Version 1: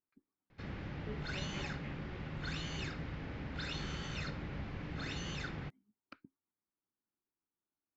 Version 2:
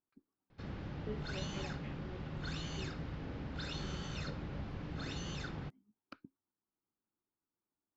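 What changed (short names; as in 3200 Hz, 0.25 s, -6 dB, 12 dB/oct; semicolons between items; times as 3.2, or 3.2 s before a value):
speech +3.5 dB; master: add bell 2100 Hz -6.5 dB 0.82 oct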